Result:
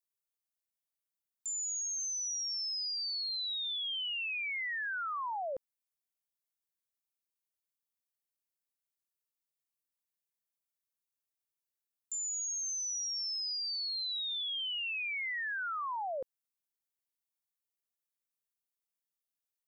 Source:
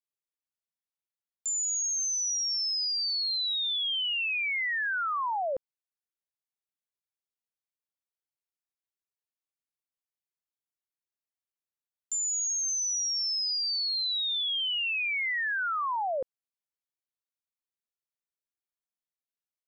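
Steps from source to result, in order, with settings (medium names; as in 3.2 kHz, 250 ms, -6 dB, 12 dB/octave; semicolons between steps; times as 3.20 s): treble shelf 6.8 kHz +11 dB; peak limiter -28.5 dBFS, peak gain reduction 7.5 dB; trim -5 dB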